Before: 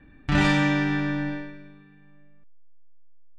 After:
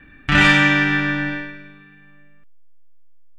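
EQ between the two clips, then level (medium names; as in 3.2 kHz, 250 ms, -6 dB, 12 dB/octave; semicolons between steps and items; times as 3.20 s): high-order bell 2 kHz +8.5 dB; treble shelf 5.5 kHz +7 dB; +3.0 dB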